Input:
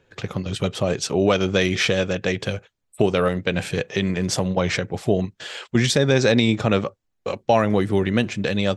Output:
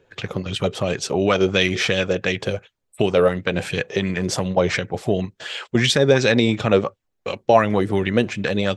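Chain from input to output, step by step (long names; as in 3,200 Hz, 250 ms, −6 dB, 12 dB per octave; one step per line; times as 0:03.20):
auto-filter bell 2.8 Hz 380–3,200 Hz +9 dB
level −1 dB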